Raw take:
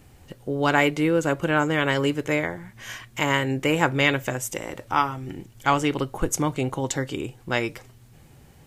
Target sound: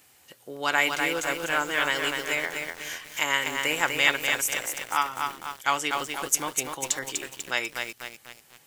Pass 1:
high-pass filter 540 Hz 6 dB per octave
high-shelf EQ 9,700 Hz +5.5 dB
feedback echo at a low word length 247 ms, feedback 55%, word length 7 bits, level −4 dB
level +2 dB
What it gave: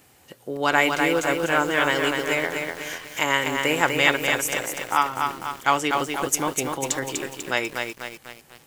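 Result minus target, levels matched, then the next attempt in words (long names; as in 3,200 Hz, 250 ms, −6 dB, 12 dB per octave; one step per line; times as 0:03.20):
500 Hz band +4.5 dB
high-pass filter 1,800 Hz 6 dB per octave
high-shelf EQ 9,700 Hz +5.5 dB
feedback echo at a low word length 247 ms, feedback 55%, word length 7 bits, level −4 dB
level +2 dB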